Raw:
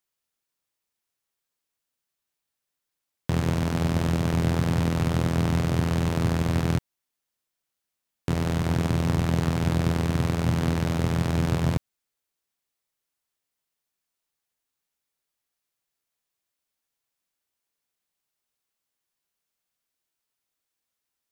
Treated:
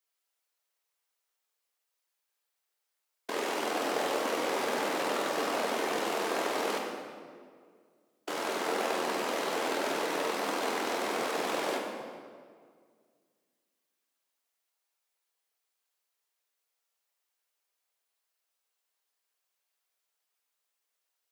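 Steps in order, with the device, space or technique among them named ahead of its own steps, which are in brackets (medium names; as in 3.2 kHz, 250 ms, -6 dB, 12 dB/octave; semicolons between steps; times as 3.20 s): whispering ghost (whisper effect; high-pass 410 Hz 24 dB/octave; reverberation RT60 2.0 s, pre-delay 3 ms, DRR -0.5 dB); trim -1.5 dB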